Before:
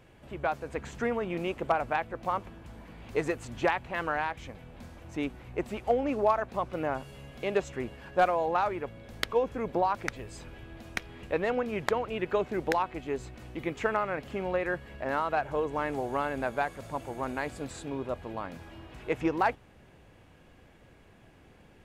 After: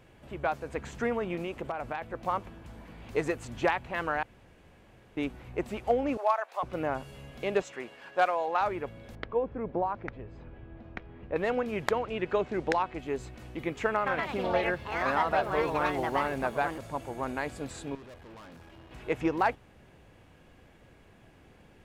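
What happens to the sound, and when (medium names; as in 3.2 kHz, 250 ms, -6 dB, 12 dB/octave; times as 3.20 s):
1.35–2.02 s: compression, threshold -30 dBFS
4.23–5.17 s: room tone
6.17–6.63 s: high-pass 620 Hz 24 dB/octave
7.62–8.61 s: frequency weighting A
9.15–11.36 s: tape spacing loss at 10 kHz 44 dB
11.99–12.99 s: low-pass 7.4 kHz
13.94–17.37 s: ever faster or slower copies 121 ms, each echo +4 st, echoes 2
17.95–18.91 s: valve stage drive 46 dB, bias 0.75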